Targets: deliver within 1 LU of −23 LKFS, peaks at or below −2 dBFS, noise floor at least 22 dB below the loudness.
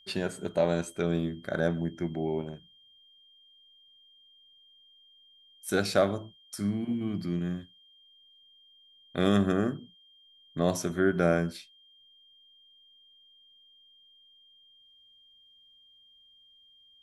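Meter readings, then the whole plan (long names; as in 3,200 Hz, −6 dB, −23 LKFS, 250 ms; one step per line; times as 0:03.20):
interfering tone 3,200 Hz; level of the tone −57 dBFS; integrated loudness −30.0 LKFS; sample peak −11.0 dBFS; target loudness −23.0 LKFS
→ notch filter 3,200 Hz, Q 30
level +7 dB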